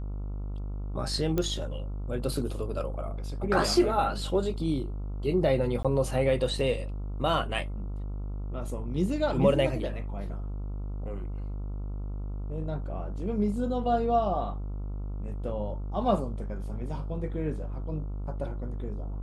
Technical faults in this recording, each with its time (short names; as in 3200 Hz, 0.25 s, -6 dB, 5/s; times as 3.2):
buzz 50 Hz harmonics 28 -34 dBFS
1.38 pop -15 dBFS
5.83–5.85 gap 16 ms